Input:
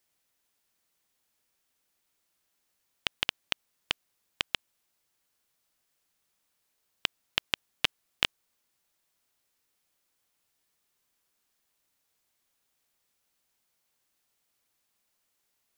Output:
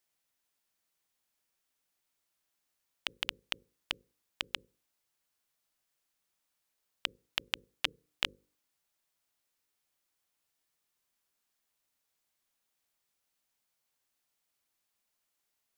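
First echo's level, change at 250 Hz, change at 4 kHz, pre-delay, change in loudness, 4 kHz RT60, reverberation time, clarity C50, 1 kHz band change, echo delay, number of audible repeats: no echo audible, −6.5 dB, −5.0 dB, no reverb audible, −5.0 dB, no reverb audible, no reverb audible, no reverb audible, −5.0 dB, no echo audible, no echo audible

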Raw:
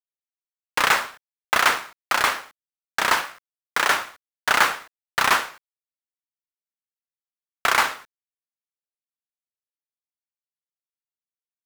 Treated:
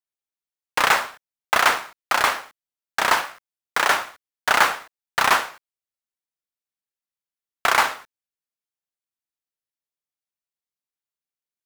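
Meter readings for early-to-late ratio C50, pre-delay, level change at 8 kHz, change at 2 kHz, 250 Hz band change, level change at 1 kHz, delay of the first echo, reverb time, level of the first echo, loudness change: no reverb audible, no reverb audible, 0.0 dB, +0.5 dB, +0.5 dB, +2.0 dB, no echo audible, no reverb audible, no echo audible, +1.0 dB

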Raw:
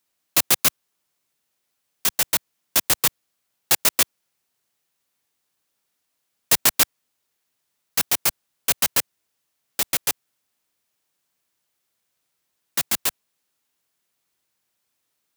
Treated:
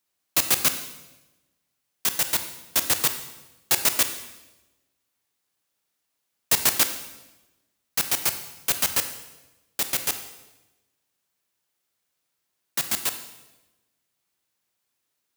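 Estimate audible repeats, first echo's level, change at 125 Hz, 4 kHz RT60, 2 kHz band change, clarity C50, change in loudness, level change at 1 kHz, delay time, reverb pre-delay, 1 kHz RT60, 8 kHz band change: no echo audible, no echo audible, −2.5 dB, 0.95 s, −2.5 dB, 10.0 dB, −2.5 dB, −2.5 dB, no echo audible, 26 ms, 1.0 s, −2.5 dB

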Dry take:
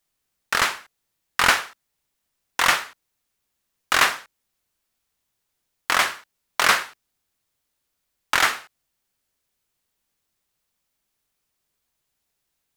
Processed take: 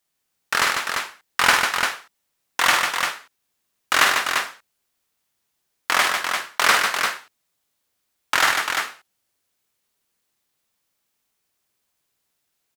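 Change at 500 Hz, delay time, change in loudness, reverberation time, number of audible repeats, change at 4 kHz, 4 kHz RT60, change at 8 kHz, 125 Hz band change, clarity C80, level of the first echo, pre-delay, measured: +2.5 dB, 49 ms, +1.0 dB, no reverb audible, 3, +3.0 dB, no reverb audible, +3.0 dB, −1.0 dB, no reverb audible, −6.0 dB, no reverb audible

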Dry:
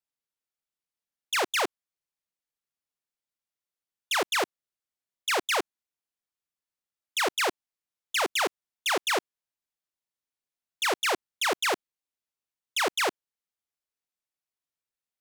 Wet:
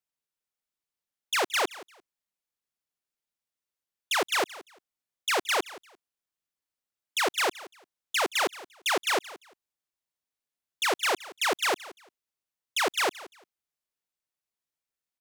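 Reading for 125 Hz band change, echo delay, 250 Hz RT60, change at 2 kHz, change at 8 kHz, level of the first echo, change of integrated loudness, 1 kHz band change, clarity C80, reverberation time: can't be measured, 173 ms, no reverb audible, 0.0 dB, 0.0 dB, −18.0 dB, 0.0 dB, 0.0 dB, no reverb audible, no reverb audible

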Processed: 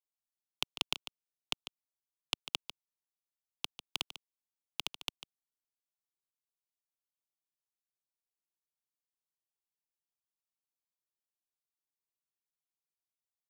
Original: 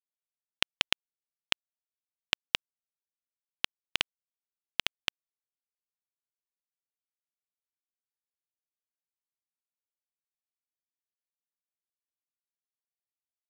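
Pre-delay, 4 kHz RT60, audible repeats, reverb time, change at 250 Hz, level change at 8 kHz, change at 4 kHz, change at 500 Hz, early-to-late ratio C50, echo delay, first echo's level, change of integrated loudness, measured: no reverb audible, no reverb audible, 1, no reverb audible, −6.0 dB, −3.5 dB, −6.5 dB, −7.0 dB, no reverb audible, 147 ms, −12.0 dB, −7.0 dB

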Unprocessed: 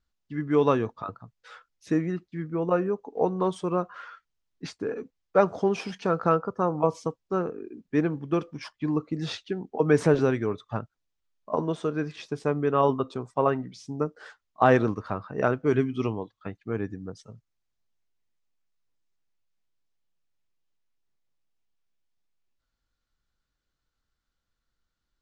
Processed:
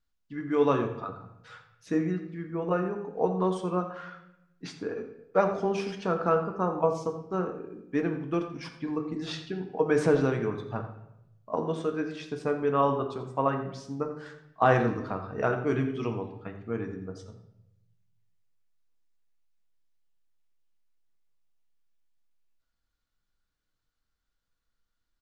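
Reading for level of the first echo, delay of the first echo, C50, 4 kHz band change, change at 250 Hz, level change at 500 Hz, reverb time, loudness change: −14.0 dB, 86 ms, 8.0 dB, −2.0 dB, −2.5 dB, −2.5 dB, 0.85 s, −2.5 dB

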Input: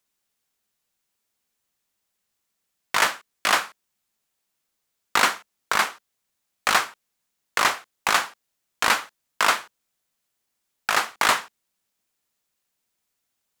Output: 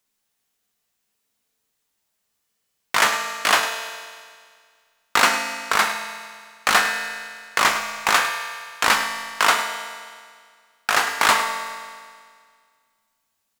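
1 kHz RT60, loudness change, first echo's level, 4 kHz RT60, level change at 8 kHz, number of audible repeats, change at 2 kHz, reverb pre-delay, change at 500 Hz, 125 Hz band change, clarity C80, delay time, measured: 1.9 s, +2.5 dB, −12.0 dB, 1.9 s, +3.5 dB, 1, +4.0 dB, 4 ms, +3.5 dB, +3.0 dB, 6.0 dB, 104 ms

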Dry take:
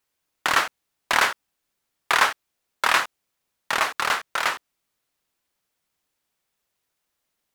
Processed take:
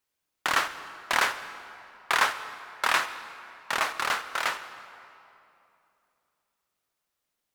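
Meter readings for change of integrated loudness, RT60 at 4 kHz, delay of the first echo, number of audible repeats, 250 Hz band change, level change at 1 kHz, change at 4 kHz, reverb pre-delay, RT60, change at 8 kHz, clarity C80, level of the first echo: −4.5 dB, 2.0 s, no echo audible, no echo audible, −4.0 dB, −4.0 dB, −4.5 dB, 38 ms, 2.9 s, −4.5 dB, 12.5 dB, no echo audible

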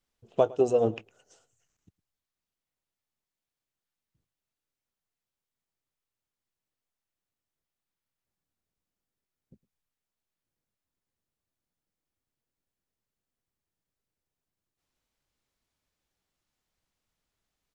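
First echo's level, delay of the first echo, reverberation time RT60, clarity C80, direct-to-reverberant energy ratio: −22.0 dB, 108 ms, no reverb audible, no reverb audible, no reverb audible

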